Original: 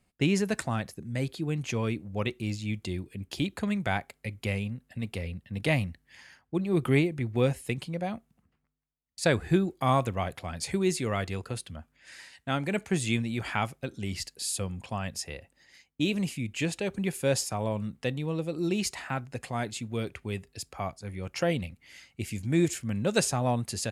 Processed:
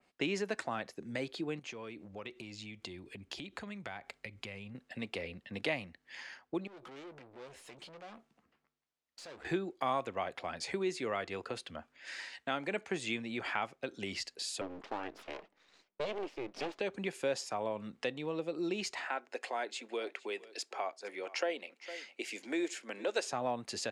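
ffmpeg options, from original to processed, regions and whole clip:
-filter_complex "[0:a]asettb=1/sr,asplit=3[s0][s1][s2];[s0]atrim=end=1.594[s3];[s1]atrim=start=1.59:end=4.75,asetpts=PTS-STARTPTS,afade=t=in:d=0.004:c=qsin,afade=t=out:st=3.156:d=0.004:c=qsin,acompressor=threshold=0.00794:ratio=5:attack=3.2:release=140:knee=1:detection=peak,asubboost=boost=3.5:cutoff=190[s4];[s2]atrim=start=4.746[s5];[s3][s4]acrossfade=d=0.004:c1=hsin:c2=qsin[s6];[s6][s5]acrossfade=d=0.004:c1=qsin:c2=hsin,asettb=1/sr,asplit=3[s7][s8][s9];[s7]atrim=end=6.674[s10];[s8]atrim=start=6.67:end=9.45,asetpts=PTS-STARTPTS,afade=t=in:d=0.004:c=qsin,afade=t=out:st=2.776:d=0.004:c=qsin,acompressor=threshold=0.0112:ratio=4:attack=3.2:release=140:knee=1:detection=peak,aeval=exprs='(tanh(316*val(0)+0.25)-tanh(0.25))/316':c=same,asplit=2[s11][s12];[s12]adelay=14,volume=0.237[s13];[s11][s13]amix=inputs=2:normalize=0,atrim=end_sample=122598[s14];[s9]atrim=start=9.446[s15];[s10][s14]acrossfade=d=0.004:c1=hsin:c2=qsin[s16];[s16][s15]acrossfade=d=0.004:c1=qsin:c2=hsin,asettb=1/sr,asplit=3[s17][s18][s19];[s17]atrim=end=14.614[s20];[s18]atrim=start=14.61:end=16.8,asetpts=PTS-STARTPTS,afade=t=in:d=0.004:c=qsin,afade=t=out:st=2.186:d=0.004:c=qsin,lowpass=f=1000:p=1,aeval=exprs='abs(val(0))':c=same[s21];[s19]atrim=start=16.796[s22];[s20][s21]acrossfade=d=0.004:c1=hsin:c2=qsin[s23];[s23][s22]acrossfade=d=0.004:c1=qsin:c2=hsin,asettb=1/sr,asplit=3[s24][s25][s26];[s24]atrim=end=19.054[s27];[s25]atrim=start=19.05:end=23.26,asetpts=PTS-STARTPTS,afade=t=in:d=0.004:c=qsin,afade=t=out:st=4.206:d=0.004:c=qsin,highpass=f=320:w=0.5412,highpass=f=320:w=1.3066,bandreject=f=1200:w=15,aecho=1:1:457:0.0708,atrim=end_sample=185661[s28];[s26]atrim=start=23.256[s29];[s27][s28]acrossfade=d=0.004:c1=hsin:c2=qsin[s30];[s30][s29]acrossfade=d=0.004:c1=qsin:c2=hsin,acrossover=split=270 7000:gain=0.1 1 0.1[s31][s32][s33];[s31][s32][s33]amix=inputs=3:normalize=0,acompressor=threshold=0.00631:ratio=2,adynamicequalizer=threshold=0.002:dfrequency=2900:dqfactor=0.7:tfrequency=2900:tqfactor=0.7:attack=5:release=100:ratio=0.375:range=2:mode=cutabove:tftype=highshelf,volume=1.78"

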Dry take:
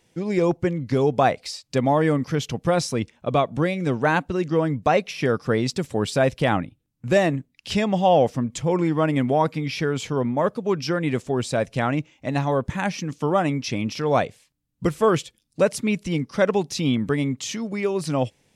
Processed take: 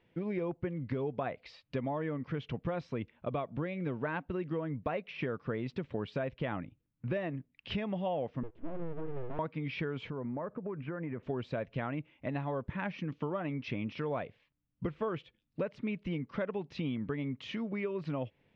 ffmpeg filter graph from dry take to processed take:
-filter_complex "[0:a]asettb=1/sr,asplit=3[s0][s1][s2];[s0]atrim=end=8.434[s3];[s1]atrim=start=8.43:end=9.39,asetpts=PTS-STARTPTS,afade=t=in:d=0.004:c=qsin,afade=t=out:st=0.956:d=0.004:c=qsin,bandpass=f=180:t=q:w=1.6,aeval=exprs='abs(val(0))':c=same[s4];[s2]atrim=start=9.386[s5];[s3][s4]acrossfade=d=0.004:c1=hsin:c2=qsin[s6];[s6][s5]acrossfade=d=0.004:c1=qsin:c2=hsin,asettb=1/sr,asplit=3[s7][s8][s9];[s7]atrim=end=10.104[s10];[s8]atrim=start=10.1:end=11.23,asetpts=PTS-STARTPTS,afade=t=in:d=0.004:c=qsin,afade=t=out:st=1.126:d=0.004:c=qsin,lowpass=f=2000:w=0.5412,lowpass=f=2000:w=1.3066,acompressor=threshold=0.0398:ratio=6:attack=3.2:release=140:knee=1:detection=peak[s11];[s9]atrim=start=11.226[s12];[s10][s11]acrossfade=d=0.004:c1=hsin:c2=qsin[s13];[s13][s12]acrossfade=d=0.004:c1=qsin:c2=hsin,lowpass=f=3000:w=0.5412,lowpass=f=3000:w=1.3066,bandreject=f=780:w=12,acompressor=threshold=0.0447:ratio=5,volume=0.531"

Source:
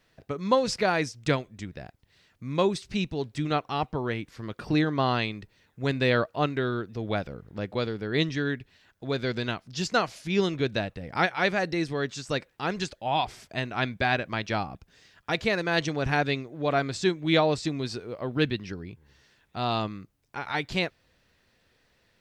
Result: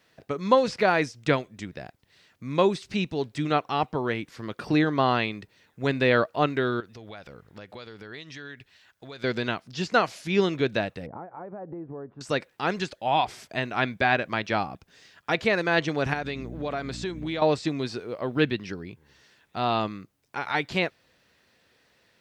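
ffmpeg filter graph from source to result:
-filter_complex "[0:a]asettb=1/sr,asplit=3[s0][s1][s2];[s0]atrim=end=6.804[s3];[s1]atrim=start=6.8:end=9.24,asetpts=PTS-STARTPTS,afade=t=in:d=0.004:c=qsin,afade=t=out:st=2.436:d=0.004:c=qsin,equalizer=f=260:t=o:w=2.7:g=-8.5,acompressor=threshold=0.0112:ratio=12:attack=3.2:release=140:knee=1:detection=peak[s4];[s2]atrim=start=9.236[s5];[s3][s4]acrossfade=d=0.004:c1=hsin:c2=qsin[s6];[s6][s5]acrossfade=d=0.004:c1=qsin:c2=hsin,asettb=1/sr,asplit=3[s7][s8][s9];[s7]atrim=end=11.064[s10];[s8]atrim=start=11.06:end=12.21,asetpts=PTS-STARTPTS,afade=t=in:d=0.004:c=qsin,afade=t=out:st=1.146:d=0.004:c=qsin,acompressor=threshold=0.02:ratio=16:attack=3.2:release=140:knee=1:detection=peak,lowpass=f=1000:w=0.5412,lowpass=f=1000:w=1.3066[s11];[s9]atrim=start=12.206[s12];[s10][s11]acrossfade=d=0.004:c1=hsin:c2=qsin[s13];[s13][s12]acrossfade=d=0.004:c1=qsin:c2=hsin,asettb=1/sr,asplit=3[s14][s15][s16];[s14]atrim=end=16.134[s17];[s15]atrim=start=16.13:end=17.42,asetpts=PTS-STARTPTS,afade=t=in:d=0.004:c=qsin,afade=t=out:st=1.286:d=0.004:c=qsin,aeval=exprs='val(0)+0.02*(sin(2*PI*60*n/s)+sin(2*PI*2*60*n/s)/2+sin(2*PI*3*60*n/s)/3+sin(2*PI*4*60*n/s)/4+sin(2*PI*5*60*n/s)/5)':c=same,acompressor=threshold=0.0398:ratio=10:attack=3.2:release=140:knee=1:detection=peak[s18];[s16]atrim=start=17.416[s19];[s17][s18]acrossfade=d=0.004:c1=hsin:c2=qsin[s20];[s20][s19]acrossfade=d=0.004:c1=qsin:c2=hsin,highpass=f=180:p=1,acrossover=split=3400[s21][s22];[s22]acompressor=threshold=0.00631:ratio=4:attack=1:release=60[s23];[s21][s23]amix=inputs=2:normalize=0,volume=1.5"

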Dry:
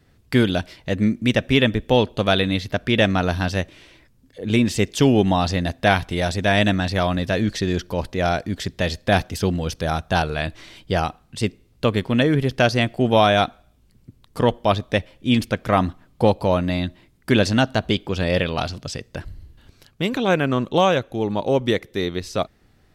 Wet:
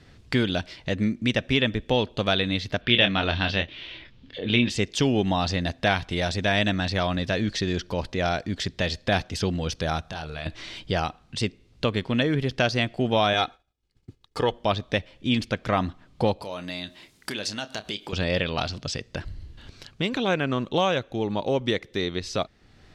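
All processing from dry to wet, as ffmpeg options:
-filter_complex "[0:a]asettb=1/sr,asplit=3[s0][s1][s2];[s0]atrim=end=2.814[s3];[s1]atrim=start=2.81:end=4.7,asetpts=PTS-STARTPTS,afade=t=in:d=0.004:c=qsin,afade=t=out:st=1.886:d=0.004:c=qsin,lowpass=f=3300:t=q:w=2.6,asplit=2[s4][s5];[s5]adelay=25,volume=0.447[s6];[s4][s6]amix=inputs=2:normalize=0,atrim=end_sample=83349[s7];[s2]atrim=start=4.696[s8];[s3][s7]acrossfade=d=0.004:c1=hsin:c2=qsin[s9];[s9][s8]acrossfade=d=0.004:c1=qsin:c2=hsin,asettb=1/sr,asplit=3[s10][s11][s12];[s10]atrim=end=10.024[s13];[s11]atrim=start=10.02:end=10.46,asetpts=PTS-STARTPTS,afade=t=in:d=0.004:c=qsin,afade=t=out:st=0.436:d=0.004:c=qsin,highshelf=f=10000:g=5.5,acompressor=threshold=0.0158:ratio=3:attack=3.2:release=140:knee=1:detection=peak,asplit=2[s14][s15];[s15]adelay=25,volume=0.376[s16];[s14][s16]amix=inputs=2:normalize=0,atrim=end_sample=19404[s17];[s12]atrim=start=10.456[s18];[s13][s17]acrossfade=d=0.004:c1=hsin:c2=qsin[s19];[s19][s18]acrossfade=d=0.004:c1=qsin:c2=hsin,asettb=1/sr,asplit=3[s20][s21][s22];[s20]atrim=end=13.334[s23];[s21]atrim=start=13.33:end=14.52,asetpts=PTS-STARTPTS,afade=t=in:d=0.004:c=qsin,afade=t=out:st=1.186:d=0.004:c=qsin,agate=range=0.0224:threshold=0.00562:ratio=3:release=100:detection=peak,lowshelf=f=190:g=-6,aecho=1:1:2.4:0.47,atrim=end_sample=52479[s24];[s22]atrim=start=14.516[s25];[s23][s24]acrossfade=d=0.004:c1=hsin:c2=qsin[s26];[s26][s25]acrossfade=d=0.004:c1=qsin:c2=hsin,asettb=1/sr,asplit=3[s27][s28][s29];[s27]atrim=end=16.424[s30];[s28]atrim=start=16.42:end=18.13,asetpts=PTS-STARTPTS,afade=t=in:d=0.004:c=qsin,afade=t=out:st=1.706:d=0.004:c=qsin,acompressor=threshold=0.0316:ratio=3:attack=3.2:release=140:knee=1:detection=peak,aemphasis=mode=production:type=bsi,asplit=2[s31][s32];[s32]adelay=29,volume=0.224[s33];[s31][s33]amix=inputs=2:normalize=0,atrim=end_sample=75411[s34];[s29]atrim=start=18.126[s35];[s30][s34]acrossfade=d=0.004:c1=hsin:c2=qsin[s36];[s36][s35]acrossfade=d=0.004:c1=qsin:c2=hsin,lowpass=4700,highshelf=f=3300:g=10,acompressor=threshold=0.00562:ratio=1.5,volume=1.78"

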